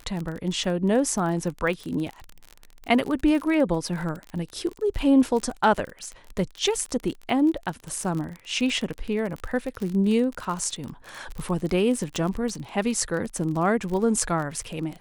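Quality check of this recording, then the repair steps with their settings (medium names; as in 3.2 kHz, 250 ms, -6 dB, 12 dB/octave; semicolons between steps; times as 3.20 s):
crackle 36 per s -29 dBFS
12.16 s: pop -15 dBFS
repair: de-click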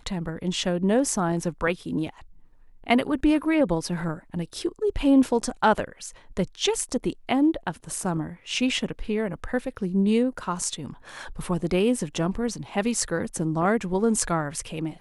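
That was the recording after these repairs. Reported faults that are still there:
nothing left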